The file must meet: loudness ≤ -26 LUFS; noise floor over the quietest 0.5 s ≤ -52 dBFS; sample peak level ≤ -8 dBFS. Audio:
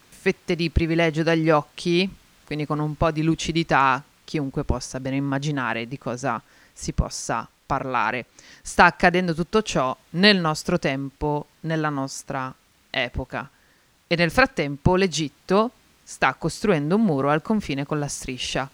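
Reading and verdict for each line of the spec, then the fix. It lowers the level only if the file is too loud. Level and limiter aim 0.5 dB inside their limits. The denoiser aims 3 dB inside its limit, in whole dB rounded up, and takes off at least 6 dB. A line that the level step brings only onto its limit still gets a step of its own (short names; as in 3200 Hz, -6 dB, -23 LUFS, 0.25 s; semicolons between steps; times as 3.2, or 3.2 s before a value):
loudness -23.0 LUFS: fail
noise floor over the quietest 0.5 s -60 dBFS: OK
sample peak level -2.0 dBFS: fail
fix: gain -3.5 dB; limiter -8.5 dBFS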